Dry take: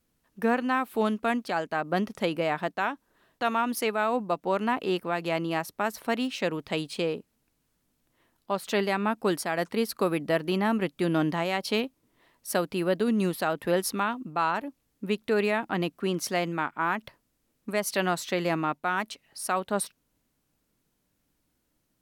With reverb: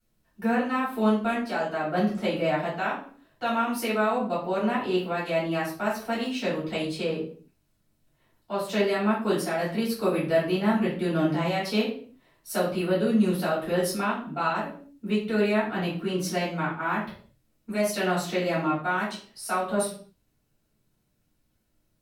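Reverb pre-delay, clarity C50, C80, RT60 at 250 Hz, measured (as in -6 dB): 3 ms, 5.0 dB, 10.0 dB, no reading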